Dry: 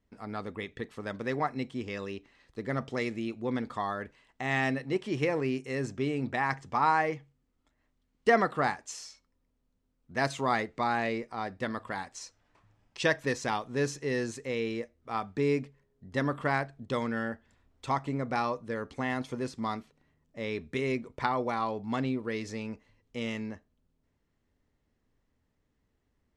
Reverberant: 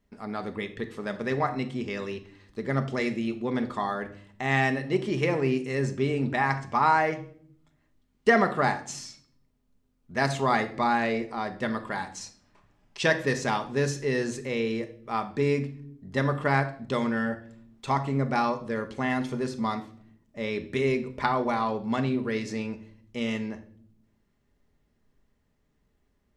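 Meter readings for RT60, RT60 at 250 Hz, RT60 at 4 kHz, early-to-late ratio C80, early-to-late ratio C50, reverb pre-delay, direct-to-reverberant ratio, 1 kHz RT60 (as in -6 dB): 0.60 s, 1.1 s, 0.45 s, 17.0 dB, 13.5 dB, 5 ms, 7.0 dB, 0.50 s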